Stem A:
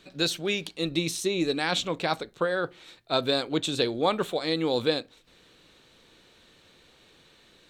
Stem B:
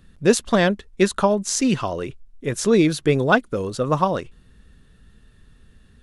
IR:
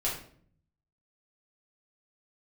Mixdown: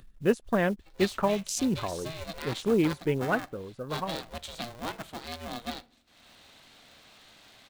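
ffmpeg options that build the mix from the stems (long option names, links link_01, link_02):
-filter_complex "[0:a]highpass=320,aeval=exprs='val(0)*sgn(sin(2*PI*240*n/s))':channel_layout=same,adelay=800,volume=-11.5dB,asplit=2[link_01][link_02];[link_02]volume=-23.5dB[link_03];[1:a]afwtdn=0.0355,volume=-8dB,afade=type=out:start_time=2.92:duration=0.76:silence=0.446684[link_04];[2:a]atrim=start_sample=2205[link_05];[link_03][link_05]afir=irnorm=-1:irlink=0[link_06];[link_01][link_04][link_06]amix=inputs=3:normalize=0,acompressor=mode=upward:threshold=-42dB:ratio=2.5,acrusher=bits=7:mode=log:mix=0:aa=0.000001"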